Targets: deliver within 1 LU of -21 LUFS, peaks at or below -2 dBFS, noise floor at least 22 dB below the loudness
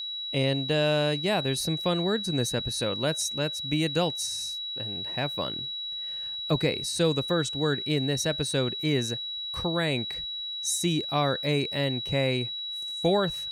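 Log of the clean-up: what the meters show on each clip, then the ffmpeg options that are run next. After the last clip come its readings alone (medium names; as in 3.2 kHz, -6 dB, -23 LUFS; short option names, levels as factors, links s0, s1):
steady tone 3.9 kHz; tone level -32 dBFS; loudness -27.5 LUFS; peak level -11.5 dBFS; loudness target -21.0 LUFS
-> -af "bandreject=f=3900:w=30"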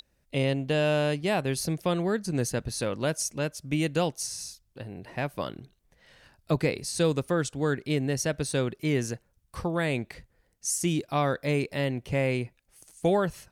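steady tone not found; loudness -28.5 LUFS; peak level -12.0 dBFS; loudness target -21.0 LUFS
-> -af "volume=2.37"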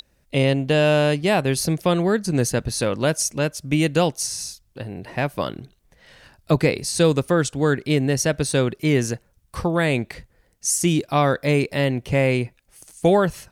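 loudness -21.0 LUFS; peak level -4.5 dBFS; noise floor -63 dBFS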